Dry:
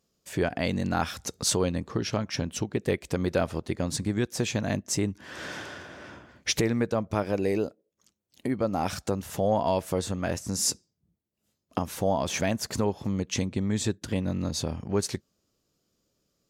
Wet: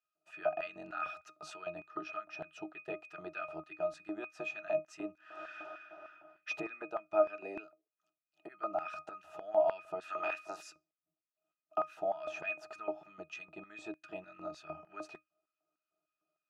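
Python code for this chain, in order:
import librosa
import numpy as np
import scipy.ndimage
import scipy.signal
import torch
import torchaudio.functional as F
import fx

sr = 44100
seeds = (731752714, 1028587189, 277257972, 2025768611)

y = fx.spec_clip(x, sr, under_db=23, at=(10.01, 10.61), fade=0.02)
y = fx.octave_resonator(y, sr, note='D#', decay_s=0.17)
y = fx.filter_lfo_highpass(y, sr, shape='square', hz=3.3, low_hz=770.0, high_hz=1600.0, q=1.8)
y = y * librosa.db_to_amplitude(9.5)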